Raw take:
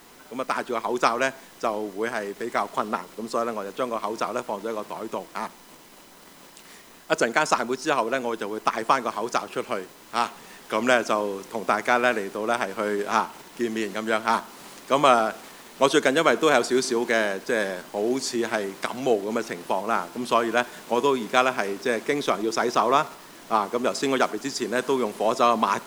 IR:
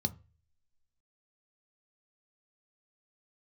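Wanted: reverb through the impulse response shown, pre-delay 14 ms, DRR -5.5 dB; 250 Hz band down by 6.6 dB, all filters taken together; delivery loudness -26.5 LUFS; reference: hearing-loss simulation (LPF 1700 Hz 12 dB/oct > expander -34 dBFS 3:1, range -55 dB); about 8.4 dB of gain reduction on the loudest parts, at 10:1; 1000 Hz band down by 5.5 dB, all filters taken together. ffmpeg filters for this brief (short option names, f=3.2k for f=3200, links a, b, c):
-filter_complex "[0:a]equalizer=f=250:t=o:g=-8.5,equalizer=f=1k:t=o:g=-6,acompressor=threshold=-25dB:ratio=10,asplit=2[a][b];[1:a]atrim=start_sample=2205,adelay=14[c];[b][c]afir=irnorm=-1:irlink=0,volume=3dB[d];[a][d]amix=inputs=2:normalize=0,lowpass=1.7k,agate=range=-55dB:threshold=-34dB:ratio=3,volume=-2dB"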